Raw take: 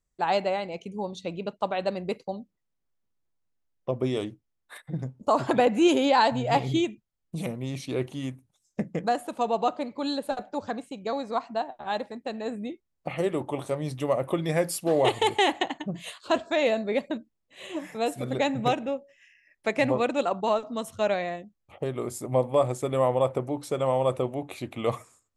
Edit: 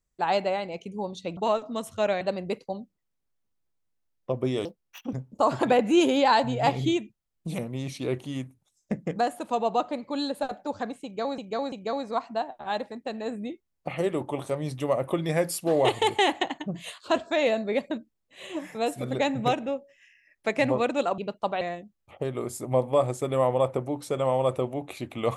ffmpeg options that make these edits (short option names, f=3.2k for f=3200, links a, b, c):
-filter_complex "[0:a]asplit=9[a][b][c][d][e][f][g][h][i];[a]atrim=end=1.372[j];[b]atrim=start=20.378:end=21.222[k];[c]atrim=start=1.798:end=4.244[l];[d]atrim=start=4.24:end=5.01,asetpts=PTS-STARTPTS,asetrate=70560,aresample=44100,atrim=end_sample=21223,asetpts=PTS-STARTPTS[m];[e]atrim=start=5.006:end=11.262[n];[f]atrim=start=10.918:end=11.262[o];[g]atrim=start=10.918:end=20.382[p];[h]atrim=start=1.368:end=1.802[q];[i]atrim=start=21.218[r];[j][k]acrossfade=d=0.004:c1=hsin:c2=hsin[s];[s][l]acrossfade=d=0.004:c1=hsin:c2=hsin[t];[t][m]acrossfade=d=0.004:c1=hsin:c2=hsin[u];[u][n]acrossfade=d=0.004:c1=hsin:c2=hsin[v];[v][o]acrossfade=d=0.004:c1=hsin:c2=hsin[w];[w][p]acrossfade=d=0.004:c1=hsin:c2=hsin[x];[x][q]acrossfade=d=0.004:c1=hsin:c2=hsin[y];[y][r]acrossfade=d=0.004:c1=hsin:c2=hsin"